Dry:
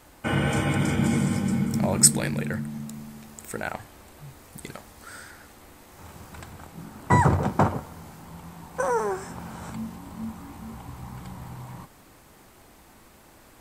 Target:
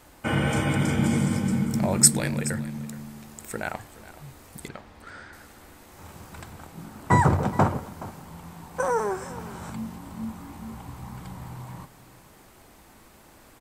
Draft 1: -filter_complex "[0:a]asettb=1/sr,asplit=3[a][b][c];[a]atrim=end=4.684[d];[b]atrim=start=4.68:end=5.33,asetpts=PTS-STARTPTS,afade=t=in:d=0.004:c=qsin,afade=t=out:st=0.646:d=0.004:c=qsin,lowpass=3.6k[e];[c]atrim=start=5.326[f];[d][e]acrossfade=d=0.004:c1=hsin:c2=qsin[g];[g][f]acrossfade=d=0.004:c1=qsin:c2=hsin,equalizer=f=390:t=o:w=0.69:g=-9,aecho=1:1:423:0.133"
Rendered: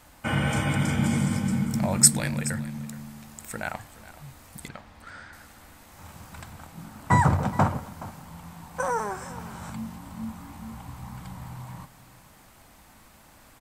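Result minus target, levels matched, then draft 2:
500 Hz band -3.5 dB
-filter_complex "[0:a]asettb=1/sr,asplit=3[a][b][c];[a]atrim=end=4.684[d];[b]atrim=start=4.68:end=5.33,asetpts=PTS-STARTPTS,afade=t=in:d=0.004:c=qsin,afade=t=out:st=0.646:d=0.004:c=qsin,lowpass=3.6k[e];[c]atrim=start=5.326[f];[d][e]acrossfade=d=0.004:c1=hsin:c2=qsin[g];[g][f]acrossfade=d=0.004:c1=qsin:c2=hsin,aecho=1:1:423:0.133"

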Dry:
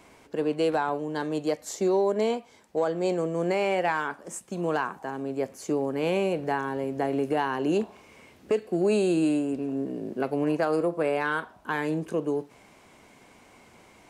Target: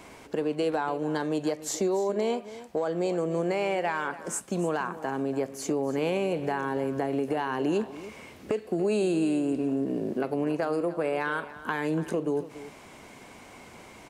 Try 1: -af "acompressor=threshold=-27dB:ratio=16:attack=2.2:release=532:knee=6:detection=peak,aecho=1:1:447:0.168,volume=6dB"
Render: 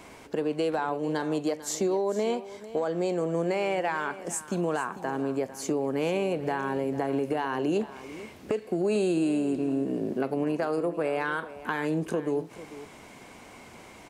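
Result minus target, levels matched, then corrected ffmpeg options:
echo 0.161 s late
-af "acompressor=threshold=-27dB:ratio=16:attack=2.2:release=532:knee=6:detection=peak,aecho=1:1:286:0.168,volume=6dB"

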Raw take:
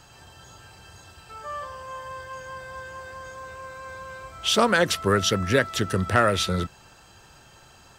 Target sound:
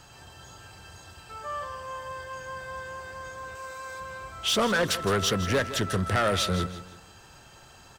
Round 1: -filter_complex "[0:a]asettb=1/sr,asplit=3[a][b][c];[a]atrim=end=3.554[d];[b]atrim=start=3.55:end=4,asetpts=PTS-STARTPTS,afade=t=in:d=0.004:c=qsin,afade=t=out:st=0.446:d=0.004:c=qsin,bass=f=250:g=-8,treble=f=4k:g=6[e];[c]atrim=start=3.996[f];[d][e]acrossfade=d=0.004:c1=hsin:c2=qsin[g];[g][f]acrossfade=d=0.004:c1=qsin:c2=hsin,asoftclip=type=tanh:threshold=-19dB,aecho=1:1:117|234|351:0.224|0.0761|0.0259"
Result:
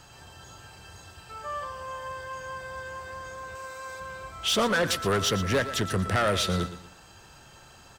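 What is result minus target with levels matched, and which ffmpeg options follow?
echo 46 ms early
-filter_complex "[0:a]asettb=1/sr,asplit=3[a][b][c];[a]atrim=end=3.554[d];[b]atrim=start=3.55:end=4,asetpts=PTS-STARTPTS,afade=t=in:d=0.004:c=qsin,afade=t=out:st=0.446:d=0.004:c=qsin,bass=f=250:g=-8,treble=f=4k:g=6[e];[c]atrim=start=3.996[f];[d][e]acrossfade=d=0.004:c1=hsin:c2=qsin[g];[g][f]acrossfade=d=0.004:c1=qsin:c2=hsin,asoftclip=type=tanh:threshold=-19dB,aecho=1:1:163|326|489:0.224|0.0761|0.0259"

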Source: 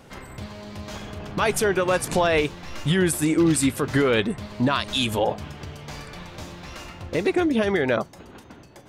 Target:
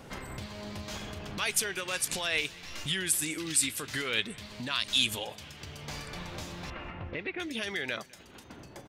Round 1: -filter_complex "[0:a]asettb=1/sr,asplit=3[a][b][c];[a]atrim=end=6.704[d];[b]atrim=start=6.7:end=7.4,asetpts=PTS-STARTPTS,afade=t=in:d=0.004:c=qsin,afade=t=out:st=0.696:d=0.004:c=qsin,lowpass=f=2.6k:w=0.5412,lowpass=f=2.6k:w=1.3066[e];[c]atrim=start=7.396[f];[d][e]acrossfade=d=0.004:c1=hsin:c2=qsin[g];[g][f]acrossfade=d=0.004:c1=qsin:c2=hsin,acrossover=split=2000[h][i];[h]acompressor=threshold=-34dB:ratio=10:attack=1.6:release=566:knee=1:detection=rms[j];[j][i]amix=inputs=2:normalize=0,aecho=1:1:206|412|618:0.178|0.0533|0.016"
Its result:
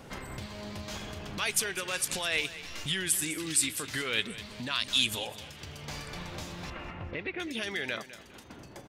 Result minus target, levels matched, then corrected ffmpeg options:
echo-to-direct +9 dB
-filter_complex "[0:a]asettb=1/sr,asplit=3[a][b][c];[a]atrim=end=6.704[d];[b]atrim=start=6.7:end=7.4,asetpts=PTS-STARTPTS,afade=t=in:d=0.004:c=qsin,afade=t=out:st=0.696:d=0.004:c=qsin,lowpass=f=2.6k:w=0.5412,lowpass=f=2.6k:w=1.3066[e];[c]atrim=start=7.396[f];[d][e]acrossfade=d=0.004:c1=hsin:c2=qsin[g];[g][f]acrossfade=d=0.004:c1=qsin:c2=hsin,acrossover=split=2000[h][i];[h]acompressor=threshold=-34dB:ratio=10:attack=1.6:release=566:knee=1:detection=rms[j];[j][i]amix=inputs=2:normalize=0,aecho=1:1:206|412:0.0631|0.0189"

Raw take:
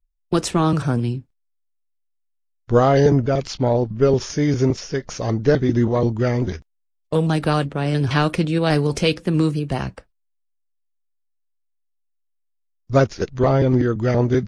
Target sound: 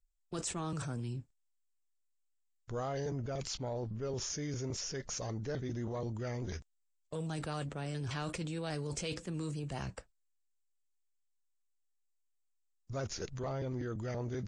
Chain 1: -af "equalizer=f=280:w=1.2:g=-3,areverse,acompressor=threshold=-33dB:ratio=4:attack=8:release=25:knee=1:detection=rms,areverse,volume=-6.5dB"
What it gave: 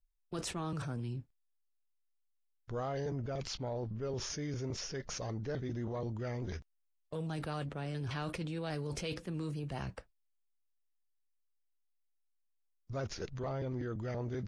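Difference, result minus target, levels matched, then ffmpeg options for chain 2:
8000 Hz band -4.0 dB
-af "lowpass=f=7.7k:t=q:w=5.1,equalizer=f=280:w=1.2:g=-3,areverse,acompressor=threshold=-33dB:ratio=4:attack=8:release=25:knee=1:detection=rms,areverse,volume=-6.5dB"

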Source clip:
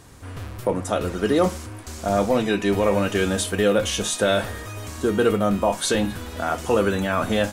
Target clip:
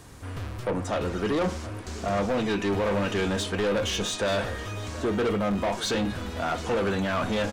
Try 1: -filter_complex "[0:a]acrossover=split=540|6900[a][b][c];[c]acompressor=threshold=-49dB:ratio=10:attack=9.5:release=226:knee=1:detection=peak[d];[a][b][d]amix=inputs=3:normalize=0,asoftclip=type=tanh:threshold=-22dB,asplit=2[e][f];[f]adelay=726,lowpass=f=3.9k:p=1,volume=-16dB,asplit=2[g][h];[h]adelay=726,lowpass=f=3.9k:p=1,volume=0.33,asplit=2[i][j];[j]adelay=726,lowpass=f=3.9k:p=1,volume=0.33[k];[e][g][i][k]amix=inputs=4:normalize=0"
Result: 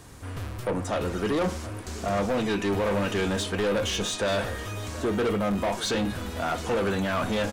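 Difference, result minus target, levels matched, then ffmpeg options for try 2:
compressor: peak gain reduction -8.5 dB
-filter_complex "[0:a]acrossover=split=540|6900[a][b][c];[c]acompressor=threshold=-58.5dB:ratio=10:attack=9.5:release=226:knee=1:detection=peak[d];[a][b][d]amix=inputs=3:normalize=0,asoftclip=type=tanh:threshold=-22dB,asplit=2[e][f];[f]adelay=726,lowpass=f=3.9k:p=1,volume=-16dB,asplit=2[g][h];[h]adelay=726,lowpass=f=3.9k:p=1,volume=0.33,asplit=2[i][j];[j]adelay=726,lowpass=f=3.9k:p=1,volume=0.33[k];[e][g][i][k]amix=inputs=4:normalize=0"

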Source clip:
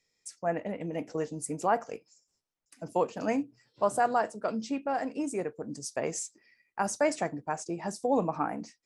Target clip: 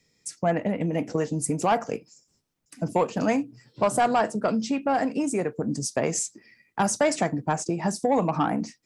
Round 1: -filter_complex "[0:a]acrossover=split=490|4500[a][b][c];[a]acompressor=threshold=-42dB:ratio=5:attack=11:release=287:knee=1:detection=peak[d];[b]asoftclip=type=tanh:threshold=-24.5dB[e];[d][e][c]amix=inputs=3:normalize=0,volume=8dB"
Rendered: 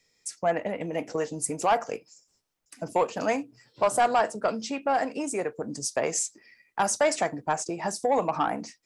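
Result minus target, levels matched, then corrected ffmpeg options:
125 Hz band -9.0 dB
-filter_complex "[0:a]acrossover=split=490|4500[a][b][c];[a]acompressor=threshold=-42dB:ratio=5:attack=11:release=287:knee=1:detection=peak,equalizer=f=160:t=o:w=2.9:g=11[d];[b]asoftclip=type=tanh:threshold=-24.5dB[e];[d][e][c]amix=inputs=3:normalize=0,volume=8dB"

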